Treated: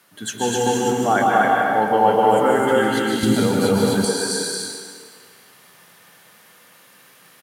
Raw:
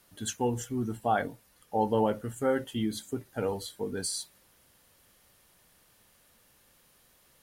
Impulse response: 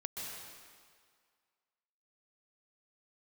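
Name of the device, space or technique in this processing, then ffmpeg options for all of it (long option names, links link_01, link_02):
stadium PA: -filter_complex "[0:a]highpass=frequency=130:width=0.5412,highpass=frequency=130:width=1.3066,equalizer=frequency=1600:width_type=o:width=1.9:gain=6.5,aecho=1:1:151.6|256.6:0.316|0.891[link_01];[1:a]atrim=start_sample=2205[link_02];[link_01][link_02]afir=irnorm=-1:irlink=0,asettb=1/sr,asplit=3[link_03][link_04][link_05];[link_03]atrim=end=3.234[link_06];[link_04]atrim=start=3.23:end=4.05,asetpts=PTS-STARTPTS,afade=type=in:duration=0.004:curve=qsin,afade=type=out:start_time=0.816:duration=0.004:curve=qsin,bass=frequency=250:gain=14,treble=frequency=4000:gain=5[link_07];[link_05]atrim=start=4.046[link_08];[link_06][link_07]acrossfade=duration=0.004:curve1=hsin:curve2=qsin[link_09];[link_09][link_08]acrossfade=duration=0.004:curve1=qsin:curve2=hsin,volume=8.5dB"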